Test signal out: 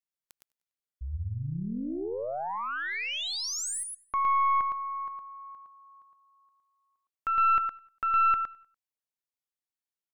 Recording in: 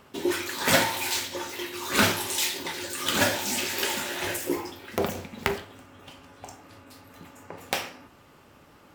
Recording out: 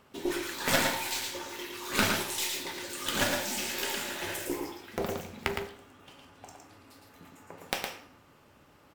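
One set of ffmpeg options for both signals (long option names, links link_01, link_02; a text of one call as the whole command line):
ffmpeg -i in.wav -filter_complex "[0:a]asplit=2[link_01][link_02];[link_02]aecho=0:1:112:0.631[link_03];[link_01][link_03]amix=inputs=2:normalize=0,aeval=exprs='0.631*(cos(1*acos(clip(val(0)/0.631,-1,1)))-cos(1*PI/2))+0.251*(cos(2*acos(clip(val(0)/0.631,-1,1)))-cos(2*PI/2))+0.0708*(cos(3*acos(clip(val(0)/0.631,-1,1)))-cos(3*PI/2))+0.01*(cos(4*acos(clip(val(0)/0.631,-1,1)))-cos(4*PI/2))+0.00631*(cos(5*acos(clip(val(0)/0.631,-1,1)))-cos(5*PI/2))':channel_layout=same,asplit=2[link_04][link_05];[link_05]aecho=0:1:97|194|291:0.0631|0.0271|0.0117[link_06];[link_04][link_06]amix=inputs=2:normalize=0,volume=-3.5dB" out.wav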